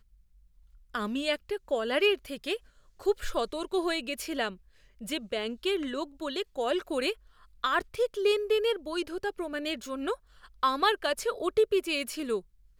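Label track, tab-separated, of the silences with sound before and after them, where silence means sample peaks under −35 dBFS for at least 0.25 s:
2.560000	3.020000	silence
4.510000	5.020000	silence
7.130000	7.640000	silence
10.140000	10.630000	silence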